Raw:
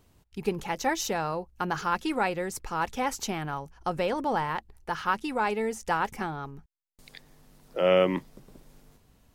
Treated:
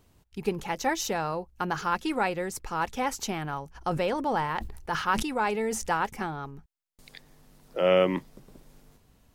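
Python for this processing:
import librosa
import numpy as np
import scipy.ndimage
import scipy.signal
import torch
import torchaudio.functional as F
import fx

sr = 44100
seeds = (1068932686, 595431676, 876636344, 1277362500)

y = fx.sustainer(x, sr, db_per_s=59.0, at=(3.74, 5.87), fade=0.02)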